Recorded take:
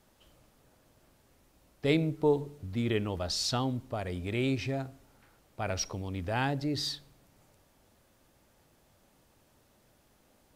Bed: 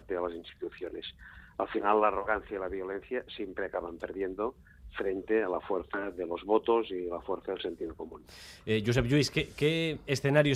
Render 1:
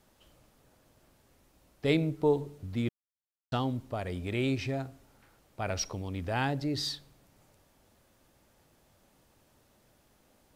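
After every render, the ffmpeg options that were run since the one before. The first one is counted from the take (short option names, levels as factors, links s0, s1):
-filter_complex "[0:a]asplit=3[s0][s1][s2];[s0]atrim=end=2.89,asetpts=PTS-STARTPTS,afade=t=out:st=2.886:d=0.004:c=hsin[s3];[s1]atrim=start=2.89:end=3.52,asetpts=PTS-STARTPTS,volume=0[s4];[s2]atrim=start=3.52,asetpts=PTS-STARTPTS,afade=t=in:d=0.004:c=hsin[s5];[s3][s4][s5]concat=n=3:v=0:a=1"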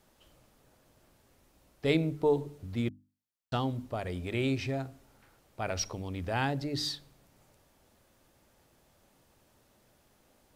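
-af "bandreject=f=50:t=h:w=6,bandreject=f=100:t=h:w=6,bandreject=f=150:t=h:w=6,bandreject=f=200:t=h:w=6,bandreject=f=250:t=h:w=6,bandreject=f=300:t=h:w=6"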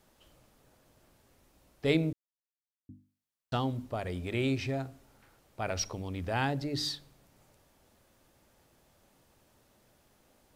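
-filter_complex "[0:a]asplit=3[s0][s1][s2];[s0]atrim=end=2.13,asetpts=PTS-STARTPTS,afade=t=out:st=2.126:d=0.004:c=hsin[s3];[s1]atrim=start=2.13:end=2.89,asetpts=PTS-STARTPTS,volume=0[s4];[s2]atrim=start=2.89,asetpts=PTS-STARTPTS,afade=t=in:d=0.004:c=hsin[s5];[s3][s4][s5]concat=n=3:v=0:a=1"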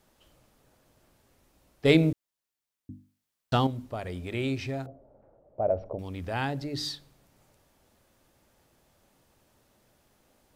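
-filter_complex "[0:a]asettb=1/sr,asplit=3[s0][s1][s2];[s0]atrim=end=1.854[s3];[s1]atrim=start=1.85:end=3.67,asetpts=PTS-STARTPTS,afade=t=in:d=0.004:c=qsin,afade=t=out:st=1.816:d=0.004:c=qsin,acontrast=83[s4];[s2]atrim=start=3.666[s5];[s3][s4]acrossfade=d=0.004:c1=hsin:c2=qsin[s6];[s6][s5]acrossfade=d=0.004:c1=qsin:c2=hsin,asettb=1/sr,asplit=3[s7][s8][s9];[s7]atrim=end=4.864[s10];[s8]atrim=start=4.86:end=5.99,asetpts=PTS-STARTPTS,afade=t=in:d=0.004:c=qsin,afade=t=out:st=1.126:d=0.004:c=qsin,lowpass=f=600:t=q:w=4.8[s11];[s9]atrim=start=5.986[s12];[s10][s11]acrossfade=d=0.004:c1=hsin:c2=qsin[s13];[s13][s12]acrossfade=d=0.004:c1=qsin:c2=hsin"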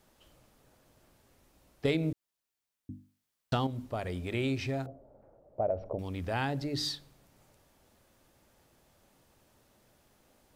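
-af "acompressor=threshold=0.0501:ratio=6"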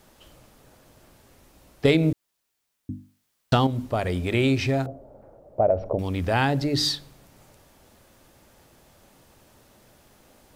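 -af "volume=3.16"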